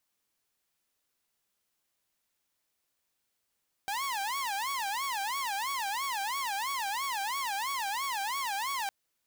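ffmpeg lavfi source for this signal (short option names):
-f lavfi -i "aevalsrc='0.0376*(2*mod((951*t-169/(2*PI*3)*sin(2*PI*3*t)),1)-1)':d=5.01:s=44100"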